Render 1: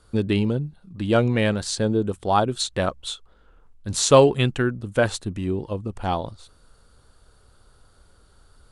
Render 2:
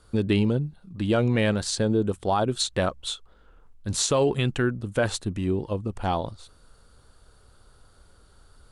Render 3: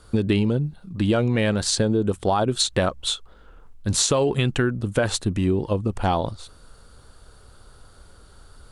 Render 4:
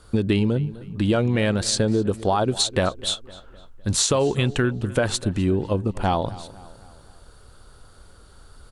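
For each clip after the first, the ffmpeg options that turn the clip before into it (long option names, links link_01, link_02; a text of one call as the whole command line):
ffmpeg -i in.wav -af "alimiter=limit=-13.5dB:level=0:latency=1:release=53" out.wav
ffmpeg -i in.wav -af "acompressor=threshold=-23dB:ratio=6,volume=6.5dB" out.wav
ffmpeg -i in.wav -filter_complex "[0:a]asplit=2[link_01][link_02];[link_02]adelay=254,lowpass=frequency=3400:poles=1,volume=-18dB,asplit=2[link_03][link_04];[link_04]adelay=254,lowpass=frequency=3400:poles=1,volume=0.5,asplit=2[link_05][link_06];[link_06]adelay=254,lowpass=frequency=3400:poles=1,volume=0.5,asplit=2[link_07][link_08];[link_08]adelay=254,lowpass=frequency=3400:poles=1,volume=0.5[link_09];[link_01][link_03][link_05][link_07][link_09]amix=inputs=5:normalize=0" out.wav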